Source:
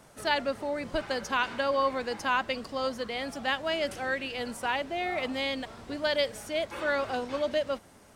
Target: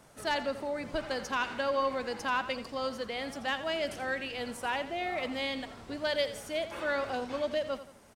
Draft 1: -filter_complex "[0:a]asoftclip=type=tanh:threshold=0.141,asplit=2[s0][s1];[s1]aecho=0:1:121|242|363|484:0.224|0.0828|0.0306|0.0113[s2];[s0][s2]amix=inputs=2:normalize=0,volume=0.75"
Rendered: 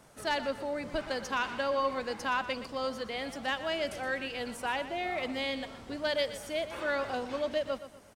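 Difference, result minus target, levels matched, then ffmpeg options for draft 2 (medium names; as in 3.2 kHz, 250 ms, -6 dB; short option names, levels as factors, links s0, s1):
echo 36 ms late
-filter_complex "[0:a]asoftclip=type=tanh:threshold=0.141,asplit=2[s0][s1];[s1]aecho=0:1:85|170|255|340:0.224|0.0828|0.0306|0.0113[s2];[s0][s2]amix=inputs=2:normalize=0,volume=0.75"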